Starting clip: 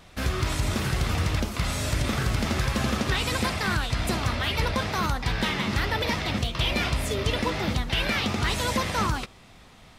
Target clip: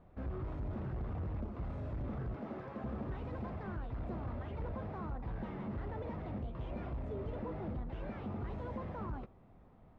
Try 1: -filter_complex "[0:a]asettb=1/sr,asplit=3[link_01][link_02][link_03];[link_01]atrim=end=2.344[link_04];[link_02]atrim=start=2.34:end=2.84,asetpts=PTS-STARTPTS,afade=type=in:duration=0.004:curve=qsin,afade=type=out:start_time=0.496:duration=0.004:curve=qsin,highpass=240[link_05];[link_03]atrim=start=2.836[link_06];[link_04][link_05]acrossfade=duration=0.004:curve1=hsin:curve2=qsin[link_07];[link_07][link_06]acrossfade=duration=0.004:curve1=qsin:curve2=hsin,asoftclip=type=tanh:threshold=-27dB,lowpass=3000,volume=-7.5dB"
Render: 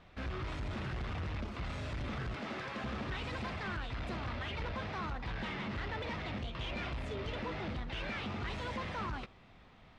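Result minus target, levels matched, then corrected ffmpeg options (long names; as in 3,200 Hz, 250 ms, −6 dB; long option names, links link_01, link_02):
4,000 Hz band +19.0 dB
-filter_complex "[0:a]asettb=1/sr,asplit=3[link_01][link_02][link_03];[link_01]atrim=end=2.344[link_04];[link_02]atrim=start=2.34:end=2.84,asetpts=PTS-STARTPTS,afade=type=in:duration=0.004:curve=qsin,afade=type=out:start_time=0.496:duration=0.004:curve=qsin,highpass=240[link_05];[link_03]atrim=start=2.836[link_06];[link_04][link_05]acrossfade=duration=0.004:curve1=hsin:curve2=qsin[link_07];[link_07][link_06]acrossfade=duration=0.004:curve1=qsin:curve2=hsin,asoftclip=type=tanh:threshold=-27dB,lowpass=780,volume=-7.5dB"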